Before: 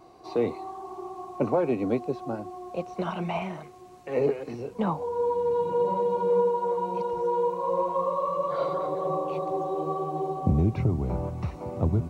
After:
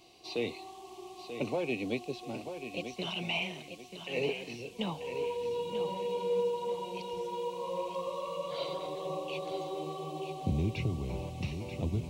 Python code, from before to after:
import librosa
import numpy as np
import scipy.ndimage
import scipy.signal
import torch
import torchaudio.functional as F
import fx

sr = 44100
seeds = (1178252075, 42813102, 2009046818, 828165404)

y = fx.high_shelf_res(x, sr, hz=2000.0, db=12.0, q=3.0)
y = fx.echo_feedback(y, sr, ms=937, feedback_pct=32, wet_db=-9)
y = F.gain(torch.from_numpy(y), -8.0).numpy()